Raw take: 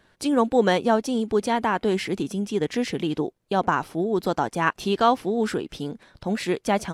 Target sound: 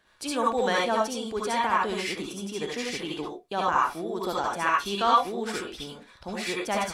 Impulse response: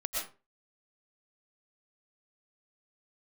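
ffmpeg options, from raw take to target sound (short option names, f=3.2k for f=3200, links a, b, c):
-filter_complex "[0:a]lowshelf=f=470:g=-10[a];[1:a]atrim=start_sample=2205,asetrate=79380,aresample=44100[b];[a][b]afir=irnorm=-1:irlink=0,volume=2.5dB"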